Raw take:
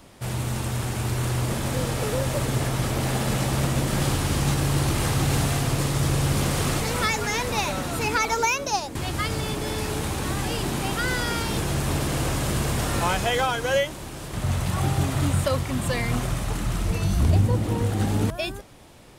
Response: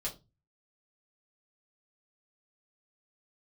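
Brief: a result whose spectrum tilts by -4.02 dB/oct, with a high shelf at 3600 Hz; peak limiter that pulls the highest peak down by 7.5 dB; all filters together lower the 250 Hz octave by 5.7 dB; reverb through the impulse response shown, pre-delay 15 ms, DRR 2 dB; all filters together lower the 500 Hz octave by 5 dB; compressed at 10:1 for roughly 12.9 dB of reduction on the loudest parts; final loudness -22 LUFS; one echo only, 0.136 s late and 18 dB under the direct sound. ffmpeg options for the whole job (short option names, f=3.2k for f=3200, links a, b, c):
-filter_complex "[0:a]equalizer=f=250:t=o:g=-8,equalizer=f=500:t=o:g=-4,highshelf=f=3.6k:g=3.5,acompressor=threshold=-29dB:ratio=10,alimiter=level_in=1dB:limit=-24dB:level=0:latency=1,volume=-1dB,aecho=1:1:136:0.126,asplit=2[a][b];[1:a]atrim=start_sample=2205,adelay=15[c];[b][c]afir=irnorm=-1:irlink=0,volume=-3.5dB[d];[a][d]amix=inputs=2:normalize=0,volume=10dB"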